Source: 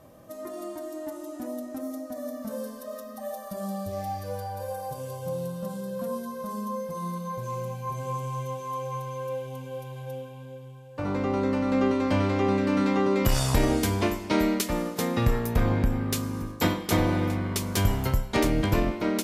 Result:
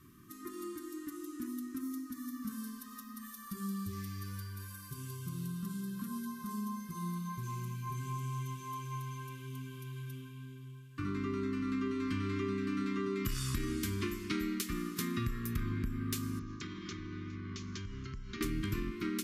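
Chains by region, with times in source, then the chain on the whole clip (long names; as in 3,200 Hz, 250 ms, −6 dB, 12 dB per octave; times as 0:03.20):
0:16.39–0:18.41: Butterworth low-pass 6,900 Hz 96 dB per octave + downward compressor 20 to 1, threshold −34 dBFS
whole clip: Chebyshev band-stop filter 390–1,100 Hz, order 4; high-shelf EQ 11,000 Hz +4 dB; downward compressor 4 to 1, threshold −30 dBFS; level −3 dB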